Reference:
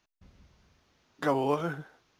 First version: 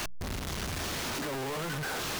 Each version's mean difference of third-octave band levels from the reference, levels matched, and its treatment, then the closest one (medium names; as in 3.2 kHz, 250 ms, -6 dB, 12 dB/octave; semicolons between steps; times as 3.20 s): 18.5 dB: one-bit comparator; hum notches 60/120/180 Hz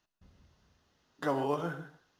2.0 dB: band-stop 2.3 kHz, Q 7.2; gated-style reverb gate 180 ms flat, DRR 9.5 dB; trim -4 dB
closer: second